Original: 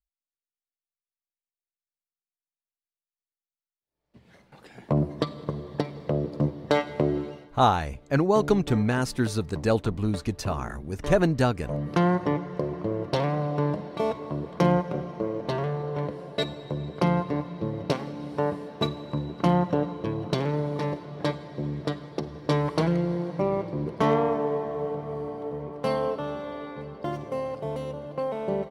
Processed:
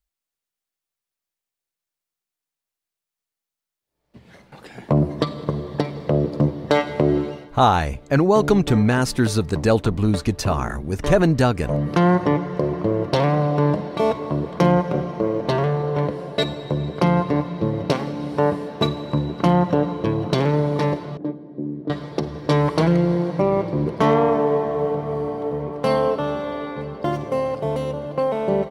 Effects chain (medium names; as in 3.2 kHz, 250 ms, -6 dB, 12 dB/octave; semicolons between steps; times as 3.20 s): in parallel at +2 dB: peak limiter -18 dBFS, peak gain reduction 10 dB; 21.17–21.90 s: on the sum: band-pass filter 280 Hz, Q 2.5; trim +1 dB